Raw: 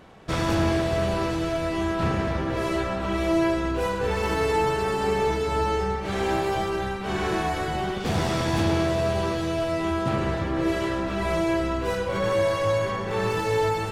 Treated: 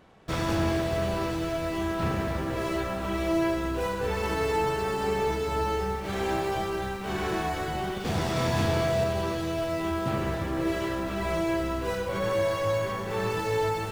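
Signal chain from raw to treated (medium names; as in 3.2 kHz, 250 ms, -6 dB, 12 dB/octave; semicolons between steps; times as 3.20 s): in parallel at -6 dB: word length cut 6-bit, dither none; 8.33–9.04 s: on the sum: doubling 32 ms -3 dB; trim -7 dB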